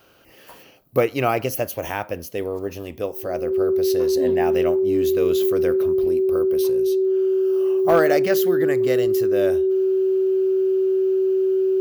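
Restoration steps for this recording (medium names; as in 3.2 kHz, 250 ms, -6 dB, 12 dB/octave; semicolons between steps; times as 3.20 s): clip repair -8.5 dBFS; band-stop 380 Hz, Q 30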